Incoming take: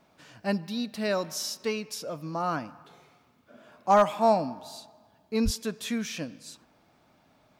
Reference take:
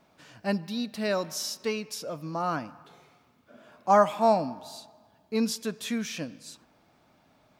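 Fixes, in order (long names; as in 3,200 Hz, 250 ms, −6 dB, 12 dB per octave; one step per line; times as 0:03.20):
clipped peaks rebuilt −12 dBFS
0:05.44–0:05.56: high-pass filter 140 Hz 24 dB per octave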